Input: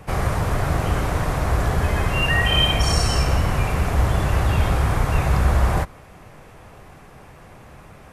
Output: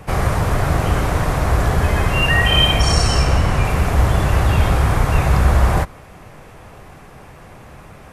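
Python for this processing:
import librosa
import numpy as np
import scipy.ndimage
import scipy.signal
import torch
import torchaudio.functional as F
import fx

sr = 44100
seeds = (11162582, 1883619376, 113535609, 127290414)

y = fx.lowpass(x, sr, hz=10000.0, slope=12, at=(2.81, 3.65))
y = y * 10.0 ** (4.0 / 20.0)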